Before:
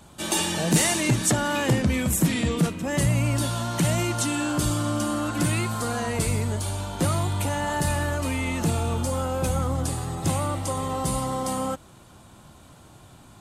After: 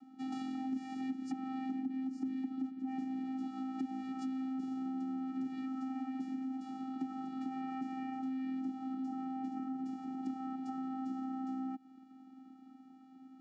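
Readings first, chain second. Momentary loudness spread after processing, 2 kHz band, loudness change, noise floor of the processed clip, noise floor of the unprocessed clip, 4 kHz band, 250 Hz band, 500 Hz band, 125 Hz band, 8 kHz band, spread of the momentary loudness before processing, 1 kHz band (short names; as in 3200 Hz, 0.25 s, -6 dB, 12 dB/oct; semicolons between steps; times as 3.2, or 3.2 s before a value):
10 LU, -27.0 dB, -15.0 dB, -58 dBFS, -50 dBFS, under -25 dB, -9.0 dB, -31.5 dB, -36.5 dB, under -40 dB, 6 LU, -14.5 dB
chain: high shelf 2500 Hz -11.5 dB; vocoder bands 8, square 262 Hz; compressor 5:1, threshold -33 dBFS, peak gain reduction 16 dB; gain -3.5 dB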